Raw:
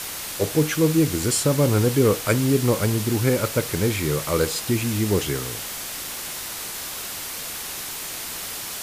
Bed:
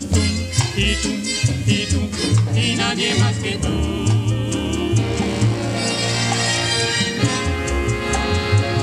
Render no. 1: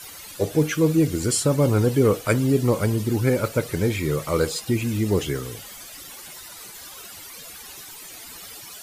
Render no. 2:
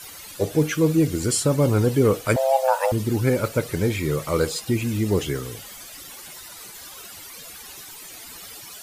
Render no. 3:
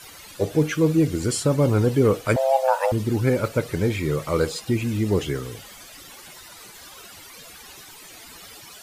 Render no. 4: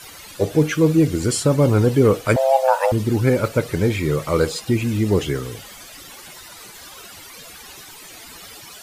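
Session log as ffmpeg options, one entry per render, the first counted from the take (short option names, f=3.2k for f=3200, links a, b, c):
-af "afftdn=nr=14:nf=-33"
-filter_complex "[0:a]asettb=1/sr,asplit=3[a][b][c];[a]atrim=end=2.364[d];[b]atrim=start=2.36:end=2.92,asetpts=PTS-STARTPTS,afade=t=in:d=0.004:c=qsin,afade=t=out:st=0.556:d=0.004:c=qsin,afreqshift=400[e];[c]atrim=start=2.916[f];[d][e]acrossfade=d=0.004:c1=hsin:c2=qsin[g];[g][f]acrossfade=d=0.004:c1=qsin:c2=hsin"
-af "highshelf=f=6.8k:g=-7.5"
-af "volume=3.5dB"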